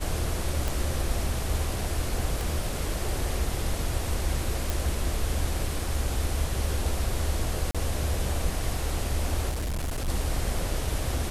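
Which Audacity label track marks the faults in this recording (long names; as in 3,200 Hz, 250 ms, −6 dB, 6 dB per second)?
0.680000	0.680000	click
2.410000	2.410000	click
4.700000	4.700000	click
7.710000	7.750000	drop-out 36 ms
9.490000	10.090000	clipping −26.5 dBFS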